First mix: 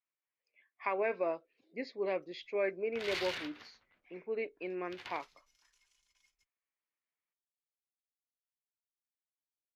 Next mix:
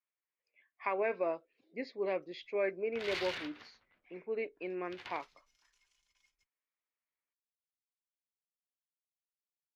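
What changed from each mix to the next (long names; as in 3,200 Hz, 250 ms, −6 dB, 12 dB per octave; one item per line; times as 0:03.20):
master: add high-shelf EQ 7,100 Hz −7 dB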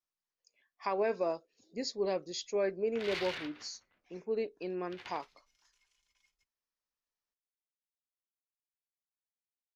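speech: remove loudspeaker in its box 190–3,000 Hz, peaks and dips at 210 Hz −6 dB, 430 Hz −3 dB, 820 Hz −3 dB, 2,200 Hz +9 dB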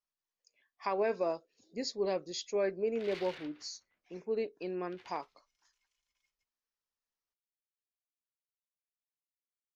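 background −8.0 dB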